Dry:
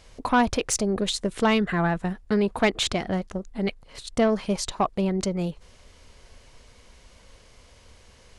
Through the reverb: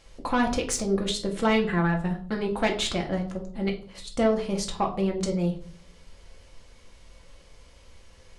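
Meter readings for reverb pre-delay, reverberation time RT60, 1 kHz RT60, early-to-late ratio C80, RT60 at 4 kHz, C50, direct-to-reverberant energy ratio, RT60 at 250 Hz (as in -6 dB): 4 ms, 0.45 s, 0.45 s, 15.5 dB, 0.35 s, 11.5 dB, 1.0 dB, 0.65 s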